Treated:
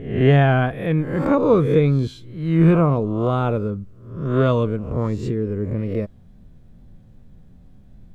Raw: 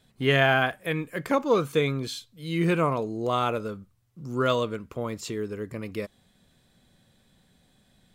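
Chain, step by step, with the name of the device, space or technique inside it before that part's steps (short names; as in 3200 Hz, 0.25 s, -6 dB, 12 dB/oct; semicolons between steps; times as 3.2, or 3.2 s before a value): spectral swells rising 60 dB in 0.66 s; plain cassette with noise reduction switched in (mismatched tape noise reduction decoder only; wow and flutter; white noise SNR 40 dB); tilt -4.5 dB/oct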